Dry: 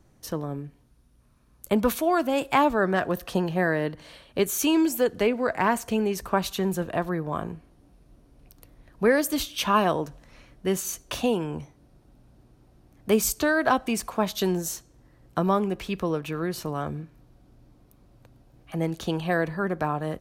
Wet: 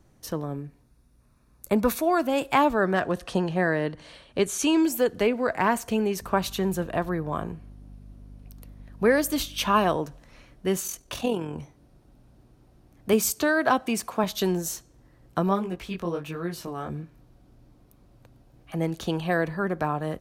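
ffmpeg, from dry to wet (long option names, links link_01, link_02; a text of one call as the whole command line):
ffmpeg -i in.wav -filter_complex "[0:a]asettb=1/sr,asplit=3[link_01][link_02][link_03];[link_01]atrim=end=0.574[link_04];[link_02]atrim=start=0.57:end=2.23,asetpts=PTS-STARTPTS,afade=type=in:duration=0.004:curve=qsin,afade=type=out:start_time=1.656:duration=0.004:curve=qsin,bandreject=frequency=3100:width=5.7[link_05];[link_03]atrim=start=2.226[link_06];[link_04][link_05]acrossfade=duration=0.004:curve1=hsin:curve2=qsin[link_07];[link_07][link_06]acrossfade=duration=0.004:curve1=qsin:curve2=hsin,asettb=1/sr,asplit=3[link_08][link_09][link_10];[link_08]atrim=end=3.004[link_11];[link_09]atrim=start=3:end=4.83,asetpts=PTS-STARTPTS,afade=type=in:duration=0.004:curve=qsin,afade=type=out:start_time=1.826:duration=0.004:curve=qsin,lowpass=frequency=10000:width=0.5412,lowpass=frequency=10000:width=1.3066[link_12];[link_10]atrim=start=4.826[link_13];[link_11][link_12]acrossfade=duration=0.004:curve1=hsin:curve2=qsin[link_14];[link_14][link_13]acrossfade=duration=0.004:curve1=qsin:curve2=hsin,asettb=1/sr,asplit=3[link_15][link_16][link_17];[link_15]atrim=end=6.204[link_18];[link_16]atrim=start=6.2:end=9.97,asetpts=PTS-STARTPTS,afade=type=in:duration=0.004:curve=qsin,afade=type=out:start_time=3.766:duration=0.004:curve=qsin,aeval=exprs='val(0)+0.00631*(sin(2*PI*50*n/s)+sin(2*PI*2*50*n/s)/2+sin(2*PI*3*50*n/s)/3+sin(2*PI*4*50*n/s)/4+sin(2*PI*5*50*n/s)/5)':channel_layout=same[link_19];[link_17]atrim=start=9.966[link_20];[link_18][link_19]acrossfade=duration=0.004:curve1=hsin:curve2=qsin[link_21];[link_21][link_20]acrossfade=duration=0.004:curve1=qsin:curve2=hsin,asettb=1/sr,asplit=3[link_22][link_23][link_24];[link_22]atrim=end=10.874[link_25];[link_23]atrim=start=10.87:end=11.58,asetpts=PTS-STARTPTS,afade=type=in:duration=0.004:curve=qsin,afade=type=out:start_time=0.706:duration=0.004:curve=qsin,tremolo=f=42:d=0.519[link_26];[link_24]atrim=start=11.576[link_27];[link_25][link_26]acrossfade=duration=0.004:curve1=hsin:curve2=qsin[link_28];[link_28][link_27]acrossfade=duration=0.004:curve1=qsin:curve2=hsin,asettb=1/sr,asplit=3[link_29][link_30][link_31];[link_29]atrim=end=13.134[link_32];[link_30]atrim=start=13.13:end=14.24,asetpts=PTS-STARTPTS,afade=type=in:duration=0.004:curve=qsin,afade=type=out:start_time=1.106:duration=0.004:curve=qsin,highpass=96[link_33];[link_31]atrim=start=14.236[link_34];[link_32][link_33]acrossfade=duration=0.004:curve1=hsin:curve2=qsin[link_35];[link_35][link_34]acrossfade=duration=0.004:curve1=qsin:curve2=hsin,asplit=3[link_36][link_37][link_38];[link_36]afade=type=out:start_time=15.48:duration=0.02[link_39];[link_37]flanger=delay=17:depth=6.6:speed=1.4,afade=type=in:start_time=15.48:duration=0.02,afade=type=out:start_time=16.89:duration=0.02[link_40];[link_38]afade=type=in:start_time=16.89:duration=0.02[link_41];[link_39][link_40][link_41]amix=inputs=3:normalize=0" out.wav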